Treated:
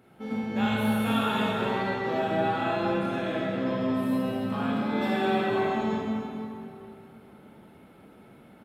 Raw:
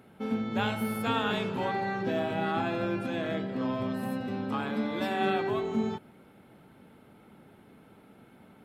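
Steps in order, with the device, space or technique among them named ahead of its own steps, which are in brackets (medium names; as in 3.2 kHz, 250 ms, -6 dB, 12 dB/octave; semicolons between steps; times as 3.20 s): cave (delay 296 ms -11.5 dB; reverberation RT60 2.6 s, pre-delay 18 ms, DRR -5.5 dB); trim -4 dB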